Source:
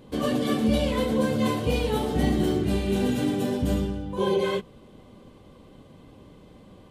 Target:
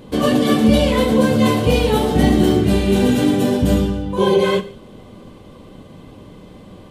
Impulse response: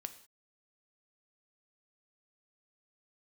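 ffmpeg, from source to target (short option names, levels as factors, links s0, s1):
-filter_complex "[0:a]asplit=2[s0][s1];[1:a]atrim=start_sample=2205[s2];[s1][s2]afir=irnorm=-1:irlink=0,volume=3.76[s3];[s0][s3]amix=inputs=2:normalize=0,volume=0.841"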